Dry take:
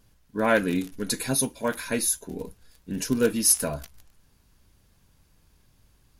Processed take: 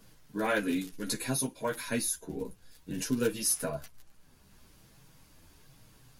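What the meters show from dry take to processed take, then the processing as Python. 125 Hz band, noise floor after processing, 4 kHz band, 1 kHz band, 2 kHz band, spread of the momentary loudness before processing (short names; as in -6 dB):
-5.5 dB, -60 dBFS, -6.0 dB, -6.0 dB, -6.0 dB, 17 LU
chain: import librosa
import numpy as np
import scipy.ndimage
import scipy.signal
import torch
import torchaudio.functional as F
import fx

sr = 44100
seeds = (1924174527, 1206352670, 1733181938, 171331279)

y = fx.chorus_voices(x, sr, voices=4, hz=0.53, base_ms=11, depth_ms=4.8, mix_pct=50)
y = fx.band_squash(y, sr, depth_pct=40)
y = F.gain(torch.from_numpy(y), -3.0).numpy()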